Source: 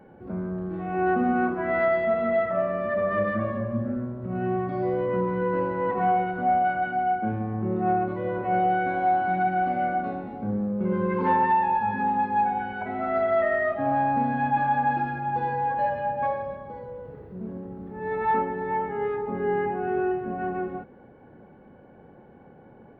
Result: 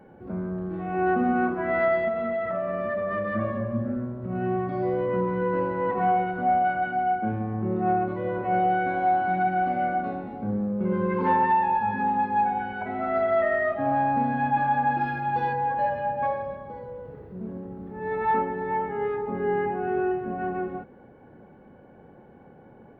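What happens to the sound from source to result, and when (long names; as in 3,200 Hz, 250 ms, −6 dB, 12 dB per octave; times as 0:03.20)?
0:02.08–0:03.35: downward compressor, threshold −24 dBFS
0:15.00–0:15.52: high-shelf EQ 2,700 Hz → 2,300 Hz +11 dB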